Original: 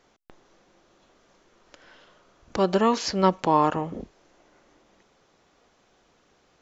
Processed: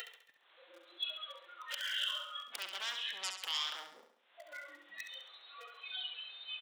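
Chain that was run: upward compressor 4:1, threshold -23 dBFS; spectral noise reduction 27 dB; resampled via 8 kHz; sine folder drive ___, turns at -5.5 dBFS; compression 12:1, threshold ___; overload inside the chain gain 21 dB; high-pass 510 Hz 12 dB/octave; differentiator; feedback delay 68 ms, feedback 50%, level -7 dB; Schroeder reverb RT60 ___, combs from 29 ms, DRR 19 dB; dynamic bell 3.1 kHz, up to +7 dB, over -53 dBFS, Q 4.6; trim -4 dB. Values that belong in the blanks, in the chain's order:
16 dB, -23 dBFS, 0.78 s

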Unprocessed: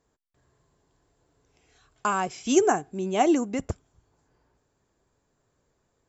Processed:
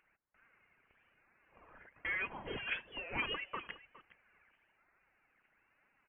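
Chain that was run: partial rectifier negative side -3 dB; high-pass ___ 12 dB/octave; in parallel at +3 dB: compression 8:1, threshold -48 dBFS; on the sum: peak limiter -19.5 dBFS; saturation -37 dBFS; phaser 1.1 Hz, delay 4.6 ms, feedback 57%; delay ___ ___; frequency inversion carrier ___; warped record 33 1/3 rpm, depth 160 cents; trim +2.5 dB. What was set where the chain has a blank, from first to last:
1.5 kHz, 413 ms, -17.5 dB, 3.2 kHz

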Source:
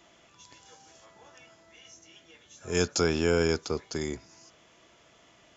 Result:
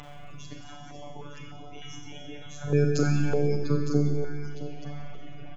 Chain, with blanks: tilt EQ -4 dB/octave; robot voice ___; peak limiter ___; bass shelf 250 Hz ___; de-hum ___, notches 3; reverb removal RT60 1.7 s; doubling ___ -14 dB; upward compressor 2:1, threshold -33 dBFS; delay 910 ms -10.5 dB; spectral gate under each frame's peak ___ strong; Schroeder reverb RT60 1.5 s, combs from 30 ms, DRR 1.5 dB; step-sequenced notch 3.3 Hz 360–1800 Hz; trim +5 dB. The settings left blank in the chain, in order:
145 Hz, -12 dBFS, -2 dB, 430.1 Hz, 40 ms, -30 dB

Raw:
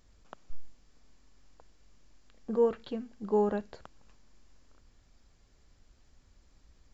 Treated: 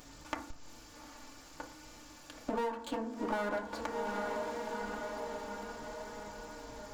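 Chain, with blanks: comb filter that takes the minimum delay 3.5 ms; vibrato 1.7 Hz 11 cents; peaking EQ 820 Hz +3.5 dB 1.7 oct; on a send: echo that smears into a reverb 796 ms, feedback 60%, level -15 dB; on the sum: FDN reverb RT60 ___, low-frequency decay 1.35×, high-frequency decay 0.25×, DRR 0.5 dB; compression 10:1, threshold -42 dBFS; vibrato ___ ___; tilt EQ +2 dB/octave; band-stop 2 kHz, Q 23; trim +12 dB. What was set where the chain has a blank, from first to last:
0.39 s, 0.69 Hz, 14 cents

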